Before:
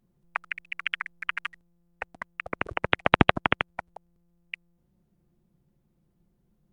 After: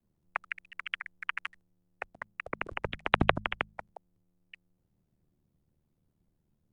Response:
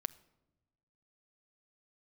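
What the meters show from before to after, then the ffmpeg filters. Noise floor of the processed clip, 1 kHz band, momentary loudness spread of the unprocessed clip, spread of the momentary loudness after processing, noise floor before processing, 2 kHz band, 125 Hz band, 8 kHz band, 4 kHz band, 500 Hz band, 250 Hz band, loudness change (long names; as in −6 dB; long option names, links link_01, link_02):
−78 dBFS, −6.0 dB, 20 LU, 17 LU, −71 dBFS, −6.0 dB, −6.0 dB, can't be measured, −6.0 dB, −5.5 dB, −7.5 dB, −6.0 dB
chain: -af "aeval=exprs='val(0)*sin(2*PI*38*n/s)':channel_layout=same,afreqshift=-31,bandreject=frequency=52.35:width_type=h:width=4,bandreject=frequency=104.7:width_type=h:width=4,bandreject=frequency=157.05:width_type=h:width=4,bandreject=frequency=209.4:width_type=h:width=4,volume=-2.5dB"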